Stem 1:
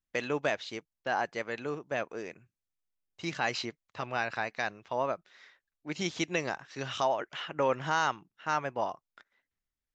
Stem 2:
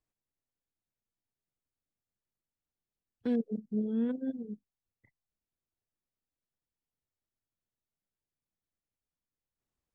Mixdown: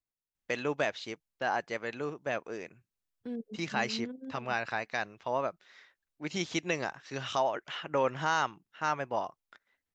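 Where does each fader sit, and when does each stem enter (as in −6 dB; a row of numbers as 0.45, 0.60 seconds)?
−0.5, −8.5 decibels; 0.35, 0.00 seconds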